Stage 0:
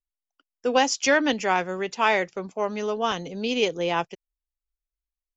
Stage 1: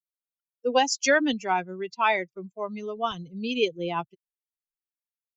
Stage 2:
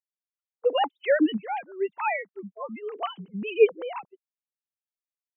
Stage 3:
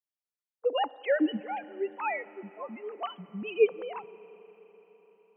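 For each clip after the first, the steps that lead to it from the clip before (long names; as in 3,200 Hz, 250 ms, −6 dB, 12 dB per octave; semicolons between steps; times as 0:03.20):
spectral dynamics exaggerated over time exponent 2; level +1.5 dB
three sine waves on the formant tracks
convolution reverb RT60 4.8 s, pre-delay 33 ms, DRR 17.5 dB; level −4.5 dB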